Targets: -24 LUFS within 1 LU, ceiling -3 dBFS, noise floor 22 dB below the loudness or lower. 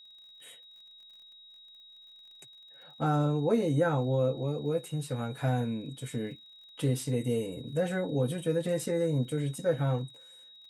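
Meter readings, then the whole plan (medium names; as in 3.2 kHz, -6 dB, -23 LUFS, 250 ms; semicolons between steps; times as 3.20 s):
tick rate 44 per s; steady tone 3.8 kHz; tone level -51 dBFS; loudness -30.5 LUFS; peak level -15.0 dBFS; loudness target -24.0 LUFS
-> de-click; band-stop 3.8 kHz, Q 30; trim +6.5 dB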